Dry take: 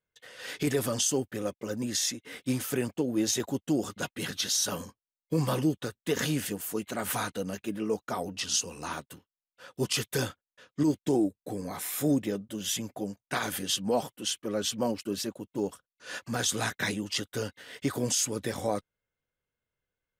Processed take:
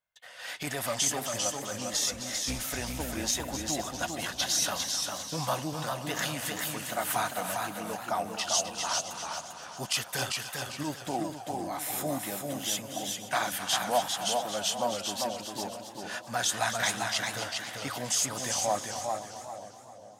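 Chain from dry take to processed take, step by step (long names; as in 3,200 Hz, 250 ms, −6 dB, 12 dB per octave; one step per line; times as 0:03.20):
0:01.93–0:03.23: sub-octave generator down 2 octaves, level −2 dB
low shelf with overshoot 540 Hz −7.5 dB, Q 3
echo with a time of its own for lows and highs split 680 Hz, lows 464 ms, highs 260 ms, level −10.5 dB
feedback echo with a swinging delay time 398 ms, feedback 31%, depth 95 cents, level −4 dB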